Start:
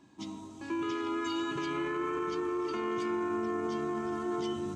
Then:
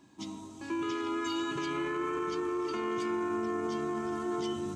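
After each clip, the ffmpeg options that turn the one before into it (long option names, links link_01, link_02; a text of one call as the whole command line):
ffmpeg -i in.wav -af "highshelf=frequency=6100:gain=6" out.wav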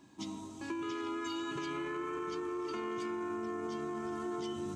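ffmpeg -i in.wav -af "acompressor=threshold=-35dB:ratio=6" out.wav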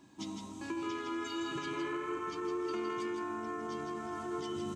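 ffmpeg -i in.wav -af "aecho=1:1:160:0.531" out.wav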